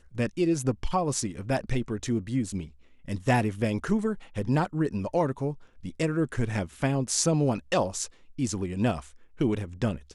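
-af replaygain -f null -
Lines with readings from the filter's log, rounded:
track_gain = +8.7 dB
track_peak = 0.270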